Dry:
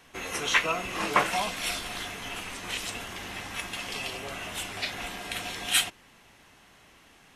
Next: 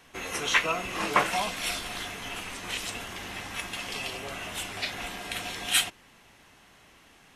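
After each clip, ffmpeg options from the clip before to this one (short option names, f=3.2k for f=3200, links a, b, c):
-af anull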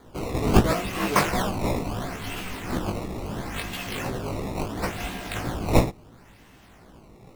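-af "acrusher=samples=16:mix=1:aa=0.000001:lfo=1:lforange=25.6:lforate=0.73,flanger=delay=15.5:depth=4.4:speed=2.9,lowshelf=f=380:g=10.5,volume=4dB"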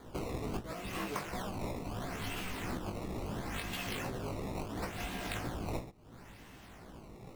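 -af "acompressor=threshold=-33dB:ratio=20,volume=-1.5dB"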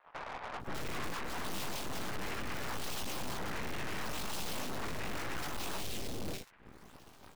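-filter_complex "[0:a]aeval=exprs='0.0668*(cos(1*acos(clip(val(0)/0.0668,-1,1)))-cos(1*PI/2))+0.00944*(cos(7*acos(clip(val(0)/0.0668,-1,1)))-cos(7*PI/2))+0.0133*(cos(8*acos(clip(val(0)/0.0668,-1,1)))-cos(8*PI/2))':c=same,acrossover=split=690|2600[a][b][c];[a]adelay=530[d];[c]adelay=600[e];[d][b][e]amix=inputs=3:normalize=0,aeval=exprs='(tanh(200*val(0)+0.65)-tanh(0.65))/200':c=same,volume=9.5dB"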